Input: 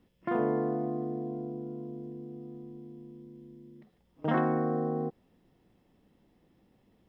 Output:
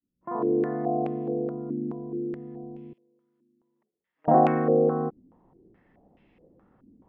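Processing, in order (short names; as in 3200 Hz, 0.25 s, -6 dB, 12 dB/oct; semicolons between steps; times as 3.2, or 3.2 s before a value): opening faded in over 1.02 s; 2.93–4.28 differentiator; stepped low-pass 4.7 Hz 280–2500 Hz; gain +3.5 dB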